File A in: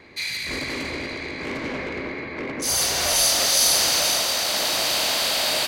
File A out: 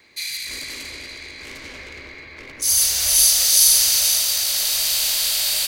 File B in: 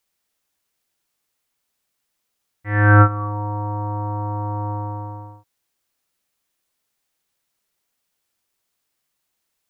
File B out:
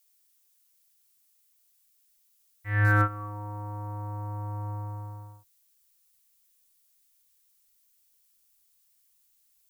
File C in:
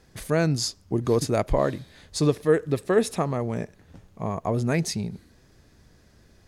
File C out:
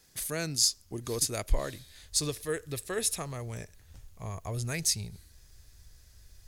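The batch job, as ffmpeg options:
-filter_complex "[0:a]asubboost=boost=12:cutoff=67,acrossover=split=770|1000[s0][s1][s2];[s1]acompressor=threshold=0.00178:ratio=6[s3];[s0][s3][s2]amix=inputs=3:normalize=0,crystalizer=i=7:c=0,volume=0.251"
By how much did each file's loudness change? +5.5 LU, -10.0 LU, -5.5 LU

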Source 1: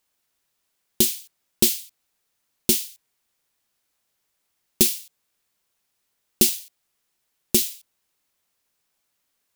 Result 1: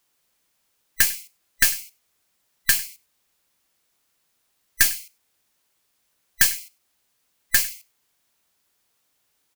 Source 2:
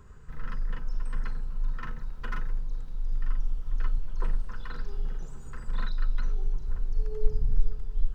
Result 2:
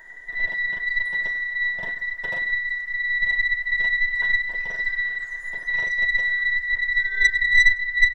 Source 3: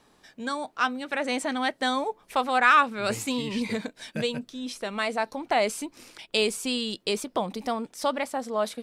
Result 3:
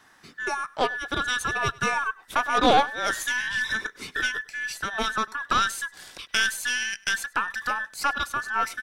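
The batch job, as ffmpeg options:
-filter_complex "[0:a]afftfilt=real='real(if(between(b,1,1012),(2*floor((b-1)/92)+1)*92-b,b),0)':imag='imag(if(between(b,1,1012),(2*floor((b-1)/92)+1)*92-b,b),0)*if(between(b,1,1012),-1,1)':win_size=2048:overlap=0.75,asplit=2[s0][s1];[s1]acompressor=threshold=0.0178:ratio=6,volume=0.841[s2];[s0][s2]amix=inputs=2:normalize=0,aeval=exprs='1.06*(cos(1*acos(clip(val(0)/1.06,-1,1)))-cos(1*PI/2))+0.106*(cos(6*acos(clip(val(0)/1.06,-1,1)))-cos(6*PI/2))':c=same,aecho=1:1:100:0.0708,volume=0.891"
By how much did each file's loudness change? 0.0 LU, +15.0 LU, +1.5 LU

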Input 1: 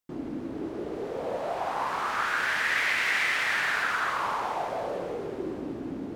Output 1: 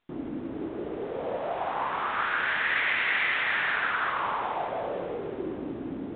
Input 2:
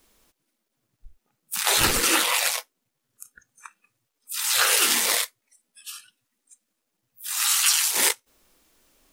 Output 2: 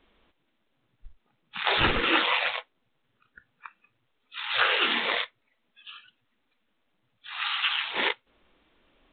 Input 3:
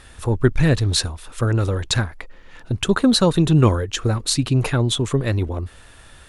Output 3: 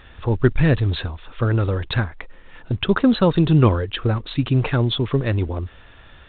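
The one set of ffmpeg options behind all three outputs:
-ar 8000 -c:a pcm_mulaw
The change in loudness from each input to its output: 0.0 LU, -5.0 LU, -0.5 LU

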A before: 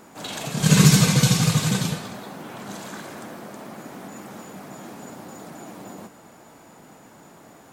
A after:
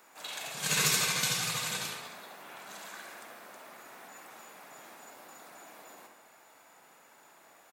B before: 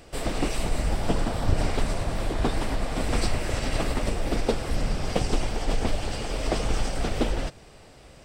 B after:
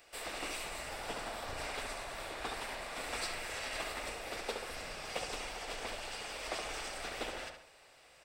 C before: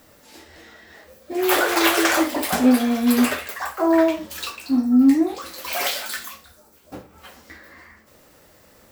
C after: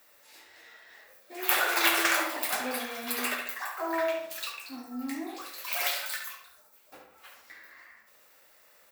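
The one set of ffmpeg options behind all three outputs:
-filter_complex "[0:a]acrossover=split=400 3200:gain=0.2 1 0.2[s0][s1][s2];[s0][s1][s2]amix=inputs=3:normalize=0,bandreject=f=3100:w=19,crystalizer=i=9.5:c=0,aeval=exprs='1.88*(cos(1*acos(clip(val(0)/1.88,-1,1)))-cos(1*PI/2))+0.299*(cos(3*acos(clip(val(0)/1.88,-1,1)))-cos(3*PI/2))+0.0106*(cos(7*acos(clip(val(0)/1.88,-1,1)))-cos(7*PI/2))':c=same,asplit=2[s3][s4];[s4]adelay=69,lowpass=f=2700:p=1,volume=0.596,asplit=2[s5][s6];[s6]adelay=69,lowpass=f=2700:p=1,volume=0.48,asplit=2[s7][s8];[s8]adelay=69,lowpass=f=2700:p=1,volume=0.48,asplit=2[s9][s10];[s10]adelay=69,lowpass=f=2700:p=1,volume=0.48,asplit=2[s11][s12];[s12]adelay=69,lowpass=f=2700:p=1,volume=0.48,asplit=2[s13][s14];[s14]adelay=69,lowpass=f=2700:p=1,volume=0.48[s15];[s5][s7][s9][s11][s13][s15]amix=inputs=6:normalize=0[s16];[s3][s16]amix=inputs=2:normalize=0,volume=0.398"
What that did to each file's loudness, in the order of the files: -11.0 LU, -11.5 LU, -9.5 LU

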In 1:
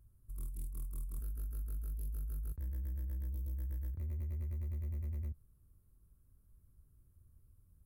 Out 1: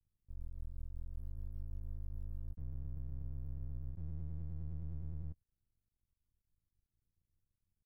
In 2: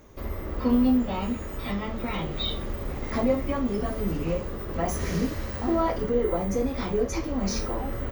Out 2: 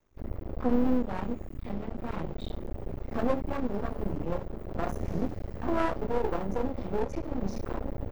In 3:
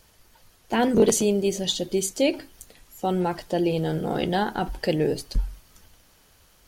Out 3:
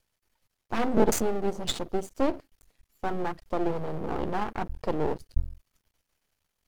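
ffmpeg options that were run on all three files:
-af "afwtdn=0.0355,equalizer=f=2200:t=o:w=0.67:g=3.5,aeval=exprs='max(val(0),0)':c=same"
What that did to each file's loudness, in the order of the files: -5.0 LU, -5.5 LU, -6.0 LU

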